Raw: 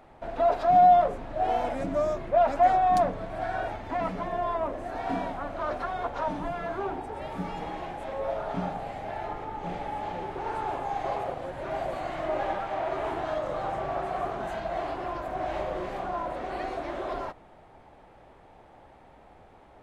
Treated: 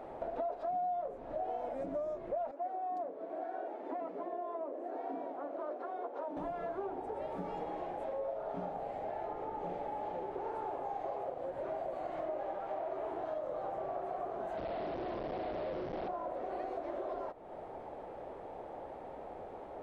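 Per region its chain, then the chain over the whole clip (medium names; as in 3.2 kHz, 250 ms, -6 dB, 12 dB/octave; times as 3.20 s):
2.51–6.37 s: ladder high-pass 260 Hz, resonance 45% + treble shelf 4.3 kHz -7 dB
14.57–16.08 s: Schmitt trigger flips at -34.5 dBFS + brick-wall FIR low-pass 4.4 kHz + loudspeaker Doppler distortion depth 0.48 ms
whole clip: peaking EQ 500 Hz +15 dB 2.1 oct; compression 5:1, threshold -35 dBFS; trim -3.5 dB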